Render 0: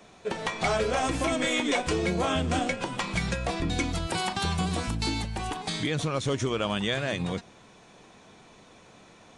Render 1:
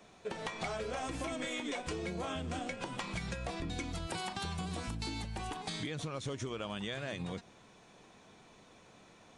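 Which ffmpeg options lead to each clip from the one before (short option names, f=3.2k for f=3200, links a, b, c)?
-af "acompressor=threshold=-29dB:ratio=6,volume=-6dB"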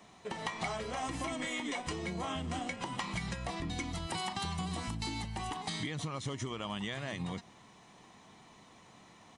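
-af "lowshelf=f=60:g=-10.5,aecho=1:1:1:0.43,volume=1.5dB"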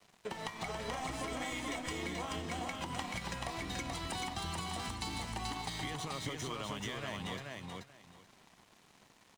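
-filter_complex "[0:a]acrossover=split=91|310[a][b][c];[a]acompressor=threshold=-51dB:ratio=4[d];[b]acompressor=threshold=-52dB:ratio=4[e];[c]acompressor=threshold=-42dB:ratio=4[f];[d][e][f]amix=inputs=3:normalize=0,aeval=exprs='sgn(val(0))*max(abs(val(0))-0.00168,0)':c=same,aecho=1:1:432|864|1296:0.708|0.127|0.0229,volume=4dB"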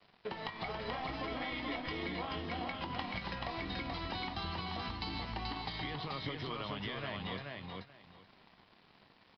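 -filter_complex "[0:a]asplit=2[a][b];[b]adelay=21,volume=-12dB[c];[a][c]amix=inputs=2:normalize=0,aresample=11025,aresample=44100"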